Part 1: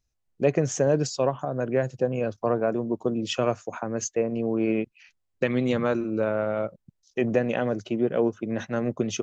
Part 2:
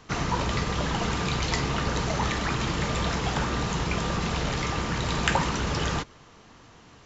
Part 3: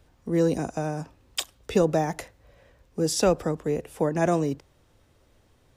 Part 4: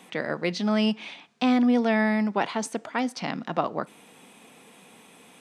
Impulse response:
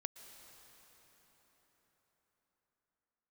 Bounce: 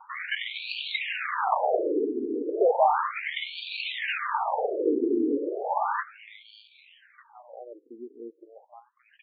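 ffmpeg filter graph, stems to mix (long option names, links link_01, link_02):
-filter_complex "[0:a]volume=-15.5dB,asplit=2[link_01][link_02];[link_02]volume=-20dB[link_03];[1:a]asoftclip=type=hard:threshold=-19dB,volume=2.5dB,asplit=2[link_04][link_05];[link_05]volume=-6dB[link_06];[2:a]asoftclip=type=tanh:threshold=-13.5dB,adelay=850,volume=2dB[link_07];[3:a]lowpass=frequency=4600:width_type=q:width=16,aecho=1:1:1.8:0.65,volume=-10.5dB[link_08];[4:a]atrim=start_sample=2205[link_09];[link_03][link_06]amix=inputs=2:normalize=0[link_10];[link_10][link_09]afir=irnorm=-1:irlink=0[link_11];[link_01][link_04][link_07][link_08][link_11]amix=inputs=5:normalize=0,equalizer=frequency=850:width_type=o:width=0.4:gain=10,acrusher=samples=23:mix=1:aa=0.000001:lfo=1:lforange=23:lforate=0.65,afftfilt=real='re*between(b*sr/1024,320*pow(3300/320,0.5+0.5*sin(2*PI*0.34*pts/sr))/1.41,320*pow(3300/320,0.5+0.5*sin(2*PI*0.34*pts/sr))*1.41)':imag='im*between(b*sr/1024,320*pow(3300/320,0.5+0.5*sin(2*PI*0.34*pts/sr))/1.41,320*pow(3300/320,0.5+0.5*sin(2*PI*0.34*pts/sr))*1.41)':win_size=1024:overlap=0.75"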